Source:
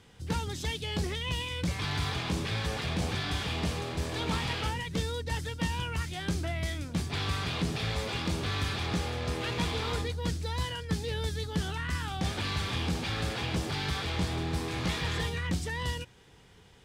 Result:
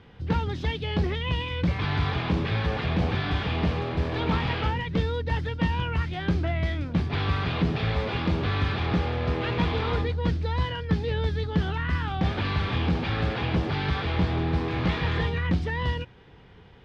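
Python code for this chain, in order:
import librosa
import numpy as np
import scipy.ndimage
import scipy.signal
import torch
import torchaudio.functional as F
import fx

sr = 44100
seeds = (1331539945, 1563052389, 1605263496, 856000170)

y = fx.air_absorb(x, sr, metres=310.0)
y = y * librosa.db_to_amplitude(7.0)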